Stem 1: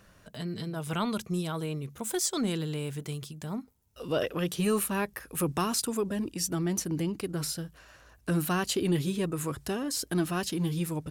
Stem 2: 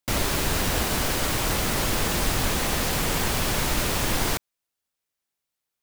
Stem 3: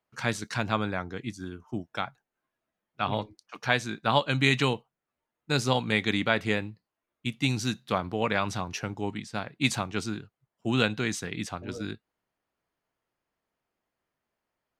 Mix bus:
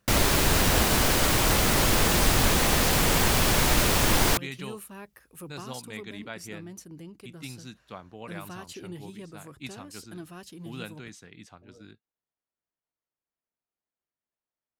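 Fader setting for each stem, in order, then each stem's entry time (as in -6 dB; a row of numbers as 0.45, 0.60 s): -13.5, +2.5, -14.5 dB; 0.00, 0.00, 0.00 s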